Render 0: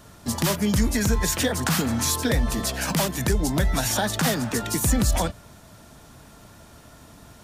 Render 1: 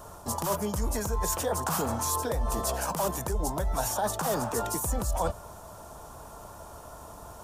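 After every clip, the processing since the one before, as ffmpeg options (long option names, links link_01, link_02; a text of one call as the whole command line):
ffmpeg -i in.wav -af "equalizer=frequency=125:width_type=o:width=1:gain=-6,equalizer=frequency=250:width_type=o:width=1:gain=-9,equalizer=frequency=500:width_type=o:width=1:gain=3,equalizer=frequency=1000:width_type=o:width=1:gain=8,equalizer=frequency=2000:width_type=o:width=1:gain=-12,equalizer=frequency=4000:width_type=o:width=1:gain=-8,areverse,acompressor=threshold=-30dB:ratio=6,areverse,volume=4dB" out.wav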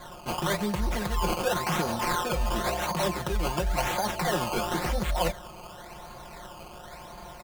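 ffmpeg -i in.wav -af "acrusher=samples=16:mix=1:aa=0.000001:lfo=1:lforange=16:lforate=0.94,aecho=1:1:5.6:0.73" out.wav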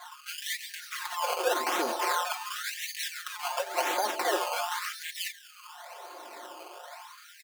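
ffmpeg -i in.wav -af "afftfilt=real='re*gte(b*sr/1024,230*pow(1700/230,0.5+0.5*sin(2*PI*0.43*pts/sr)))':imag='im*gte(b*sr/1024,230*pow(1700/230,0.5+0.5*sin(2*PI*0.43*pts/sr)))':win_size=1024:overlap=0.75" out.wav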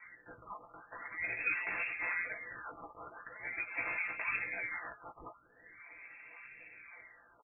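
ffmpeg -i in.wav -filter_complex "[0:a]asplit=2[link_01][link_02];[link_02]adelay=16,volume=-5dB[link_03];[link_01][link_03]amix=inputs=2:normalize=0,lowpass=frequency=2600:width_type=q:width=0.5098,lowpass=frequency=2600:width_type=q:width=0.6013,lowpass=frequency=2600:width_type=q:width=0.9,lowpass=frequency=2600:width_type=q:width=2.563,afreqshift=-3000,volume=-9dB" out.wav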